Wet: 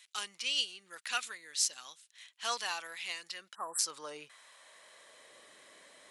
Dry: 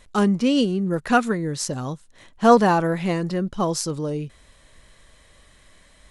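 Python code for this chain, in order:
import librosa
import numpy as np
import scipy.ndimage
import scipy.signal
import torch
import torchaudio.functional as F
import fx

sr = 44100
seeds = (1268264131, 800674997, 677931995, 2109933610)

p1 = fx.filter_sweep_highpass(x, sr, from_hz=2600.0, to_hz=390.0, start_s=3.3, end_s=5.37, q=1.2)
p2 = np.clip(p1, -10.0 ** (-18.0 / 20.0), 10.0 ** (-18.0 / 20.0))
p3 = p1 + F.gain(torch.from_numpy(p2), -7.5).numpy()
p4 = fx.spec_erase(p3, sr, start_s=3.55, length_s=0.24, low_hz=1900.0, high_hz=7500.0)
p5 = fx.dynamic_eq(p4, sr, hz=1700.0, q=1.2, threshold_db=-40.0, ratio=4.0, max_db=-4)
y = F.gain(torch.from_numpy(p5), -5.0).numpy()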